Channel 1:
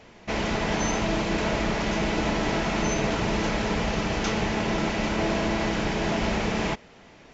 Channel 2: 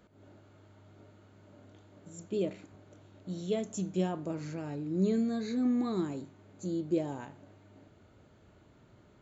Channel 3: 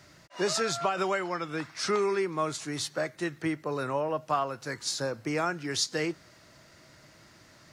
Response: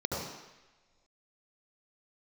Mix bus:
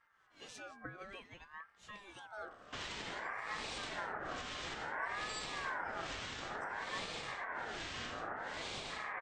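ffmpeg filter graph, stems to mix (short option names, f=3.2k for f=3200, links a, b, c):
-filter_complex "[0:a]lowshelf=f=170:g=-12,adelay=2450,volume=1dB[a];[1:a]volume=-13dB,asplit=2[b][c];[2:a]highshelf=f=4.2k:g=-10.5,bandreject=f=1.2k:w=6.8,volume=-11.5dB[d];[c]apad=whole_len=340840[e];[d][e]sidechaincompress=threshold=-53dB:ratio=3:attack=16:release=746[f];[a][f]amix=inputs=2:normalize=0,acrossover=split=840[g][h];[g]aeval=exprs='val(0)*(1-1/2+1/2*cos(2*PI*1.2*n/s))':c=same[i];[h]aeval=exprs='val(0)*(1-1/2-1/2*cos(2*PI*1.2*n/s))':c=same[j];[i][j]amix=inputs=2:normalize=0,alimiter=level_in=7dB:limit=-24dB:level=0:latency=1:release=473,volume=-7dB,volume=0dB[k];[b][k]amix=inputs=2:normalize=0,aeval=exprs='val(0)*sin(2*PI*1200*n/s+1200*0.25/0.56*sin(2*PI*0.56*n/s))':c=same"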